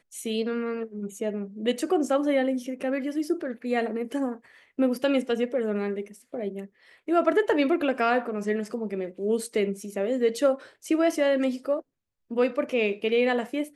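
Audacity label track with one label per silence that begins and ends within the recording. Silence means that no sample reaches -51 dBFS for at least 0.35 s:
11.820000	12.310000	silence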